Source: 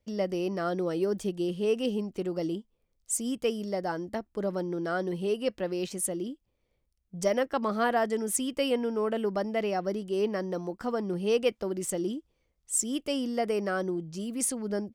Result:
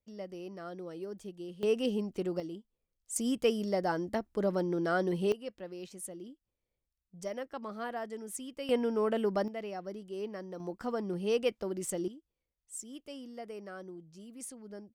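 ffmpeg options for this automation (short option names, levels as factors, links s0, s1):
-af "asetnsamples=n=441:p=0,asendcmd='1.63 volume volume -2dB;2.4 volume volume -10dB;3.16 volume volume 0.5dB;5.32 volume volume -12dB;8.69 volume volume -1dB;9.48 volume volume -10.5dB;10.6 volume volume -4dB;12.08 volume volume -15dB',volume=0.224"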